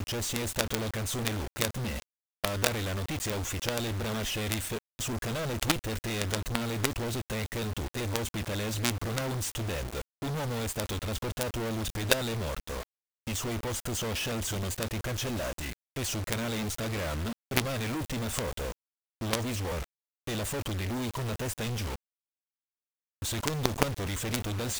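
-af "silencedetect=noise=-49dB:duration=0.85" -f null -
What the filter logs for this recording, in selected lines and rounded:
silence_start: 21.96
silence_end: 23.22 | silence_duration: 1.26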